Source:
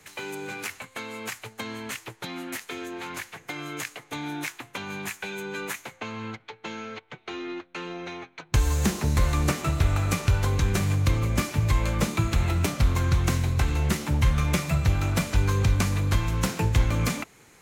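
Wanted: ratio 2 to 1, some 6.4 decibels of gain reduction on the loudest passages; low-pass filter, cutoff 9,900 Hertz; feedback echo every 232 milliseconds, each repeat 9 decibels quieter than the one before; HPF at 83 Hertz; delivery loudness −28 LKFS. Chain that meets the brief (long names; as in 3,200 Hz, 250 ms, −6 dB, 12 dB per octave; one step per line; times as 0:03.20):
high-pass filter 83 Hz
low-pass filter 9,900 Hz
downward compressor 2 to 1, threshold −31 dBFS
repeating echo 232 ms, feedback 35%, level −9 dB
level +5 dB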